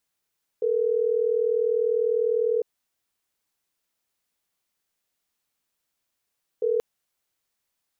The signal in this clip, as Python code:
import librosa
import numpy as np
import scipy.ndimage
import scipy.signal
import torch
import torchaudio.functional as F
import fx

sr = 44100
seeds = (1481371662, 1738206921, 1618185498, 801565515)

y = fx.call_progress(sr, length_s=6.18, kind='ringback tone', level_db=-23.0)